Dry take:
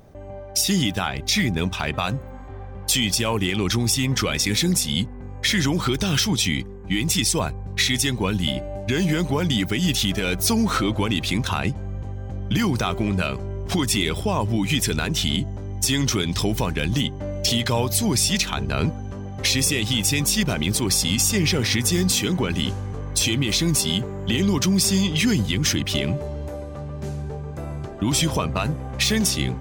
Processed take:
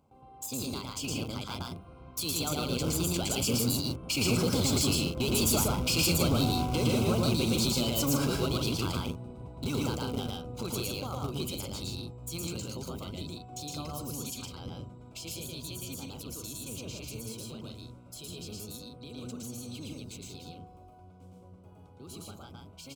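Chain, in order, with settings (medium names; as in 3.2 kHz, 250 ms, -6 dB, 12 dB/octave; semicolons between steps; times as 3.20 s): octave divider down 1 oct, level -1 dB; Doppler pass-by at 7.63 s, 10 m/s, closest 9.1 m; high-pass 46 Hz 12 dB/octave; hum notches 50/100/150 Hz; compression 2.5:1, threshold -28 dBFS, peak gain reduction 8 dB; in parallel at -6.5 dB: bit crusher 5-bit; on the sum: overload inside the chain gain 25 dB; tape speed +29%; Butterworth band-stop 1.8 kHz, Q 2.5; on a send: loudspeakers at several distances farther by 39 m -1 dB, 53 m -6 dB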